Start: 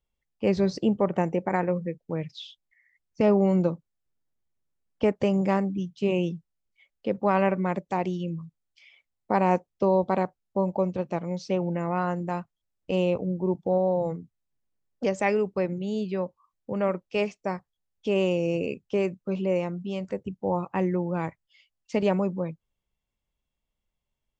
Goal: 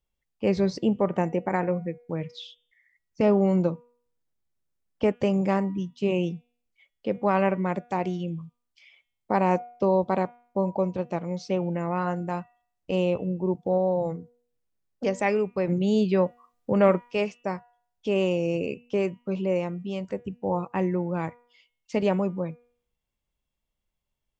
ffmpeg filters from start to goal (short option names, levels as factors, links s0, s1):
-filter_complex "[0:a]asettb=1/sr,asplit=3[s0][s1][s2];[s0]atrim=end=15.674[s3];[s1]atrim=start=15.67:end=17.11,asetpts=PTS-STARTPTS,afade=t=in:d=0.004:c=qsin,afade=t=out:st=1.436:d=0.004:c=qsin,acontrast=82[s4];[s2]atrim=start=17.106[s5];[s3][s4]acrossfade=d=0.004:c1=hsin:c2=qsin[s6];[s6][s5]acrossfade=d=0.004:c1=qsin:c2=hsin,bandreject=f=241:t=h:w=4,bandreject=f=482:t=h:w=4,bandreject=f=723:t=h:w=4,bandreject=f=964:t=h:w=4,bandreject=f=1205:t=h:w=4,bandreject=f=1446:t=h:w=4,bandreject=f=1687:t=h:w=4,bandreject=f=1928:t=h:w=4,bandreject=f=2169:t=h:w=4,bandreject=f=2410:t=h:w=4,bandreject=f=2651:t=h:w=4,bandreject=f=2892:t=h:w=4,bandreject=f=3133:t=h:w=4,bandreject=f=3374:t=h:w=4,bandreject=f=3615:t=h:w=4"